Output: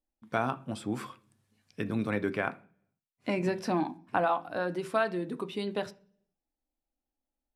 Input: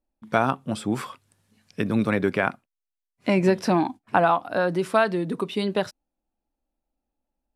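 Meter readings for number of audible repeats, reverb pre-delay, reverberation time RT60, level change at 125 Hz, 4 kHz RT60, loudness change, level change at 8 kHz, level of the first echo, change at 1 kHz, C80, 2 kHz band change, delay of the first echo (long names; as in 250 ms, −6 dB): no echo audible, 3 ms, 0.45 s, −9.0 dB, 0.55 s, −8.0 dB, −8.5 dB, no echo audible, −8.0 dB, 24.0 dB, −7.5 dB, no echo audible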